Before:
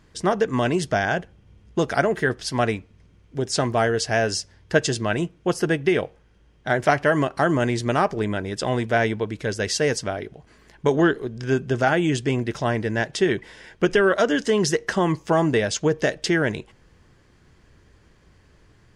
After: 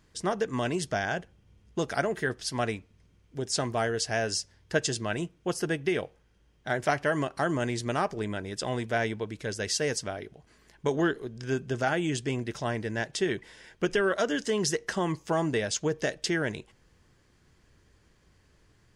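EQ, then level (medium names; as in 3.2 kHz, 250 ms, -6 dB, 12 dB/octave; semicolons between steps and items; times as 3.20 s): treble shelf 4.4 kHz +7 dB; -8.0 dB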